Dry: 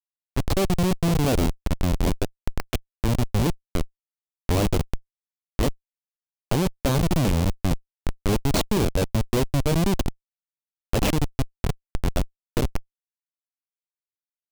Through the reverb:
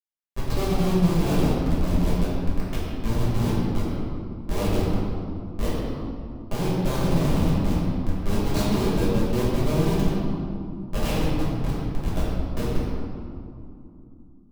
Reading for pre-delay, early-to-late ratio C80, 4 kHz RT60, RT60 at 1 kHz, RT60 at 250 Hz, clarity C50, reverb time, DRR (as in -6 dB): 5 ms, -0.5 dB, 1.4 s, 2.6 s, 4.5 s, -2.0 dB, 2.8 s, -9.0 dB